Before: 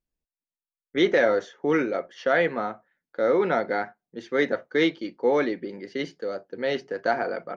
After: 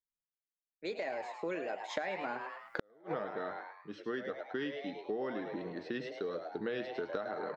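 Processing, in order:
source passing by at 0:02.78, 44 m/s, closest 5.1 metres
camcorder AGC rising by 6.8 dB per second
echo with shifted repeats 105 ms, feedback 41%, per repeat +140 Hz, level −8.5 dB
gate with flip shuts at −16 dBFS, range −39 dB
downward compressor 6 to 1, threshold −39 dBFS, peak gain reduction 13 dB
level +4.5 dB

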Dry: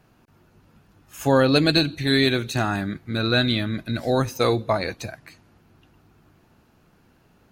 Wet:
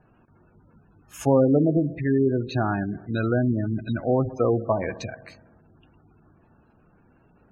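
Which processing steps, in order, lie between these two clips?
treble cut that deepens with the level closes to 860 Hz, closed at −17 dBFS
delay with a low-pass on its return 64 ms, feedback 71%, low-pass 1,500 Hz, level −16 dB
gate on every frequency bin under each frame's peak −20 dB strong

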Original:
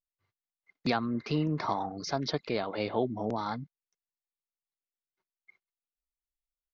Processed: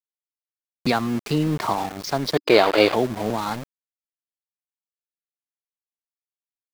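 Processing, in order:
centre clipping without the shift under −37 dBFS
gain on a spectral selection 0:02.36–0:02.94, 290–5,000 Hz +10 dB
level +7.5 dB

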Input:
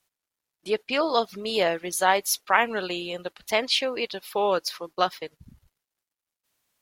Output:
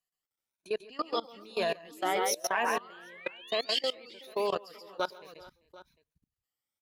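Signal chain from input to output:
rippled gain that drifts along the octave scale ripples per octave 1.5, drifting +1.1 Hz, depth 14 dB
sound drawn into the spectrogram rise, 0:01.91–0:03.69, 290–4,800 Hz −26 dBFS
on a send: multi-tap delay 125/138/389/420/752 ms −13/−6/−15.5/−15/−16 dB
on the sum: output level in coarse steps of 21 dB
level −7.5 dB

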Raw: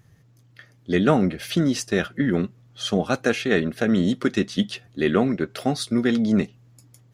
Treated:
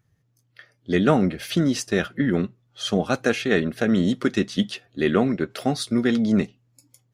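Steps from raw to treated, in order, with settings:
noise reduction from a noise print of the clip's start 12 dB

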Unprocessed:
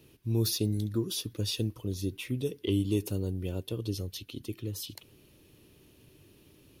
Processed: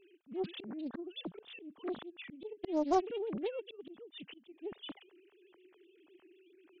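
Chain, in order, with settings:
three sine waves on the formant tracks
volume swells 346 ms
highs frequency-modulated by the lows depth 0.69 ms
level +1.5 dB

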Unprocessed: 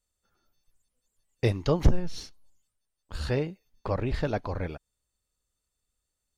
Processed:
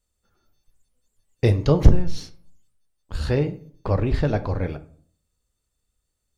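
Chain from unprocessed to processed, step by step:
low-shelf EQ 400 Hz +5.5 dB
convolution reverb RT60 0.55 s, pre-delay 14 ms, DRR 10.5 dB
level +2.5 dB

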